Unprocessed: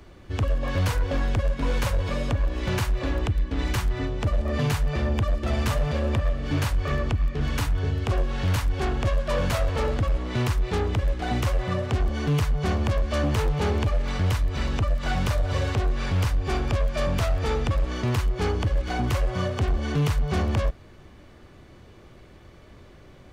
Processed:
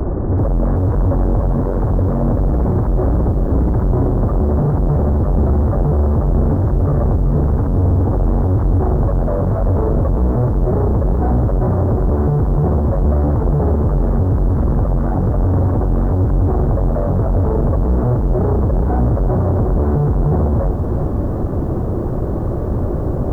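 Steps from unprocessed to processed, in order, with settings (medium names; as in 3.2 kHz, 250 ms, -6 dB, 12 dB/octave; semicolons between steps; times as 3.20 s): dynamic bell 110 Hz, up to +5 dB, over -33 dBFS, Q 1; in parallel at +2 dB: compression 6:1, threshold -31 dBFS, peak gain reduction 14.5 dB; on the sum: fuzz box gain 41 dB, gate -50 dBFS; Gaussian low-pass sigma 9.5 samples; bit-crushed delay 382 ms, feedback 55%, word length 8-bit, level -9 dB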